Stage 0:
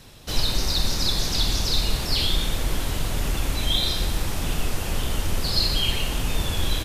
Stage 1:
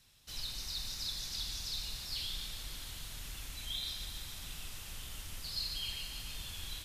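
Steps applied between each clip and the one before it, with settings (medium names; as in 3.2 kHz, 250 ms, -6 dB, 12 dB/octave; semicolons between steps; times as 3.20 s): amplifier tone stack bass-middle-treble 5-5-5; thinning echo 145 ms, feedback 80%, level -10 dB; trim -8 dB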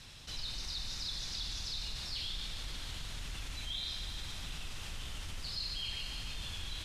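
distance through air 65 m; level flattener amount 50%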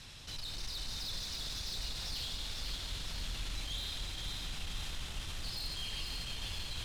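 saturation -38.5 dBFS, distortion -13 dB; echo whose repeats swap between lows and highs 249 ms, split 920 Hz, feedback 81%, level -2.5 dB; trim +1.5 dB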